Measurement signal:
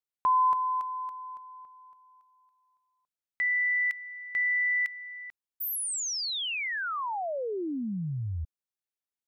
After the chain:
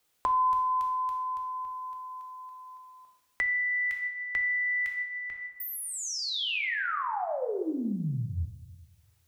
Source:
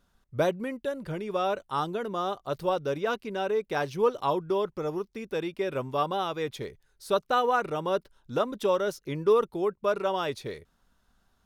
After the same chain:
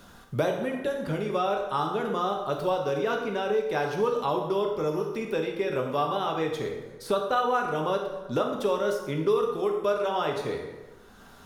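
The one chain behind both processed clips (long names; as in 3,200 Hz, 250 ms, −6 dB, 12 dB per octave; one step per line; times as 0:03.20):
dense smooth reverb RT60 0.89 s, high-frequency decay 0.75×, DRR 1.5 dB
multiband upward and downward compressor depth 70%
level −1.5 dB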